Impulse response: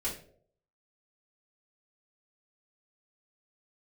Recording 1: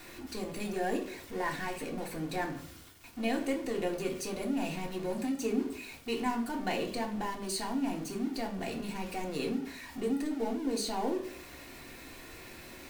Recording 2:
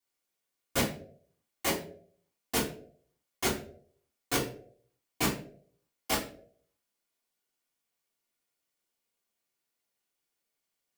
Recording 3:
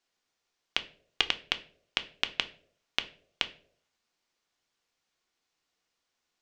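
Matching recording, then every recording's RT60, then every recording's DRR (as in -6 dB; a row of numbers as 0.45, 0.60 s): 2; 0.60, 0.60, 0.65 s; 0.5, -8.5, 8.0 dB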